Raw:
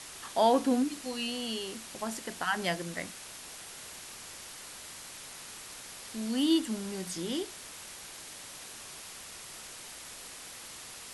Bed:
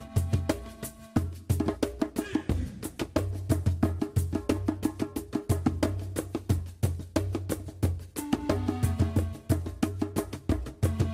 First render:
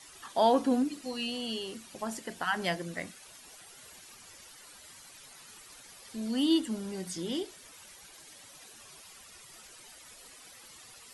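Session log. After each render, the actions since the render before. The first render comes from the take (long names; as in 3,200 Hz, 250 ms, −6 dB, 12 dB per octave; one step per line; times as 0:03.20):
broadband denoise 12 dB, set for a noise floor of −47 dBFS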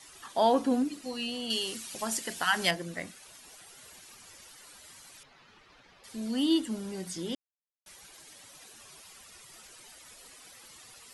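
0:01.50–0:02.71: high-shelf EQ 2,000 Hz +11 dB
0:05.23–0:06.04: high-frequency loss of the air 250 metres
0:07.35–0:07.86: silence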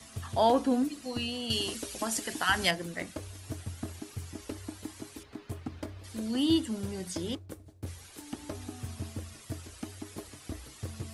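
mix in bed −13 dB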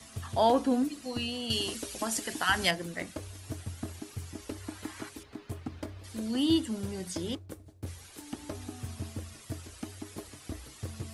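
0:04.60–0:05.08: parametric band 1,500 Hz +2.5 dB → +13.5 dB 1.8 octaves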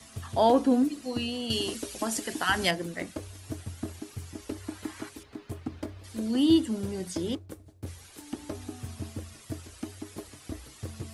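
dynamic equaliser 330 Hz, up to +5 dB, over −41 dBFS, Q 0.72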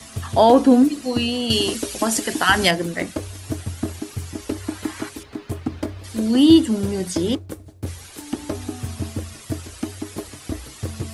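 level +10 dB
brickwall limiter −3 dBFS, peak gain reduction 3 dB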